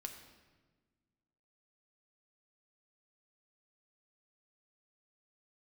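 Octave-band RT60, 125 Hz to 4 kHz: 2.0, 2.1, 1.5, 1.2, 1.1, 1.0 s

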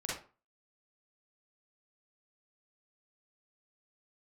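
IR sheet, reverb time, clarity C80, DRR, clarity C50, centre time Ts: 0.35 s, 9.0 dB, -6.5 dB, 0.0 dB, 50 ms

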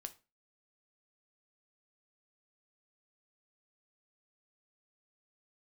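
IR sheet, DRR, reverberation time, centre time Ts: 8.5 dB, 0.30 s, 5 ms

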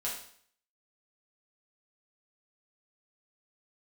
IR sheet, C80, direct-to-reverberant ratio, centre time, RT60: 8.5 dB, -6.5 dB, 36 ms, 0.55 s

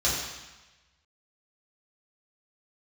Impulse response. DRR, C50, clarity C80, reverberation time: -7.5 dB, 1.5 dB, 3.5 dB, 1.1 s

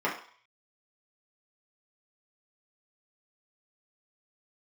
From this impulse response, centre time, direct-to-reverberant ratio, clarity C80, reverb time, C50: 26 ms, -6.0 dB, 12.0 dB, 0.50 s, 7.5 dB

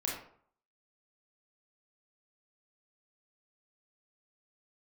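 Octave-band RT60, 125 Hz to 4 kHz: 0.60, 0.55, 0.55, 0.60, 0.45, 0.35 s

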